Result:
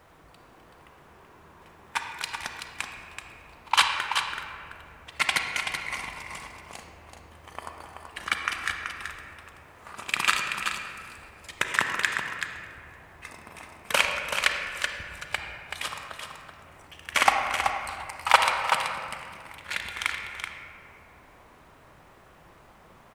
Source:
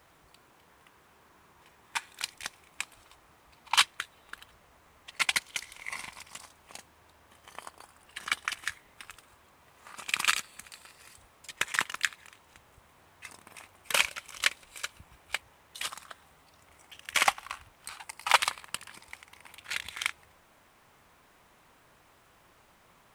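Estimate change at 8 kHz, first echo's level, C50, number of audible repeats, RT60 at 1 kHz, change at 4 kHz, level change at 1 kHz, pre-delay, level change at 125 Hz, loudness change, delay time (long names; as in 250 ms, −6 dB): 0.0 dB, −7.0 dB, 2.0 dB, 1, 1.8 s, +2.5 dB, +7.5 dB, 32 ms, +10.5 dB, +3.5 dB, 380 ms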